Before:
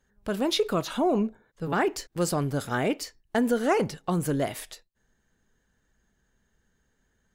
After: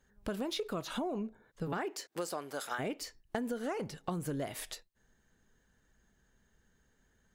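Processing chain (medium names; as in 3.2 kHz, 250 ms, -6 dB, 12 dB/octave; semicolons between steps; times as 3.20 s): de-esser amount 55%; 1.77–2.78 s: high-pass 210 Hz -> 810 Hz 12 dB/octave; compression 6:1, threshold -34 dBFS, peak gain reduction 15.5 dB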